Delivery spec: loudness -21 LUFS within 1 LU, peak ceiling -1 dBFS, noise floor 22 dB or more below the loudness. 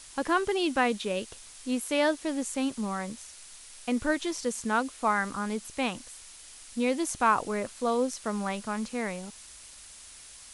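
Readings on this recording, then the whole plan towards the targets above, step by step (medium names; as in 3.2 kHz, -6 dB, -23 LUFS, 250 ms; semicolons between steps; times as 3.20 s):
noise floor -49 dBFS; noise floor target -52 dBFS; loudness -29.5 LUFS; peak level -12.0 dBFS; loudness target -21.0 LUFS
-> noise reduction 6 dB, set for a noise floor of -49 dBFS; trim +8.5 dB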